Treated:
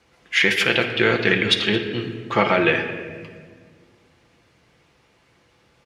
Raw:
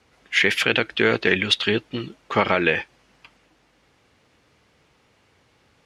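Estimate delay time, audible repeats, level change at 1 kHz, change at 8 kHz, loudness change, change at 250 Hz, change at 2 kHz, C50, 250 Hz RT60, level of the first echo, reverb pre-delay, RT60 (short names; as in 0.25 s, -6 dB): 0.221 s, 1, +1.5 dB, +1.0 dB, +1.5 dB, +2.5 dB, +1.5 dB, 7.5 dB, 2.5 s, -19.5 dB, 6 ms, 1.7 s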